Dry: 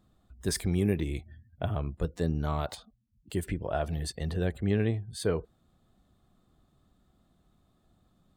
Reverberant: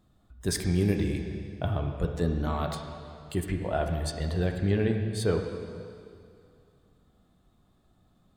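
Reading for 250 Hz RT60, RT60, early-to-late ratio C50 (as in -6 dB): 2.3 s, 2.4 s, 5.0 dB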